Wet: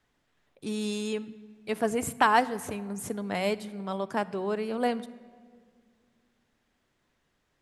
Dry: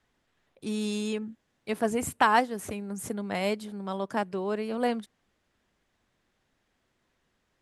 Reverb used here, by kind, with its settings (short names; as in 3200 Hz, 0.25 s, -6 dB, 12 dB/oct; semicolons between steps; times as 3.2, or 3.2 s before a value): shoebox room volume 2800 m³, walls mixed, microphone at 0.38 m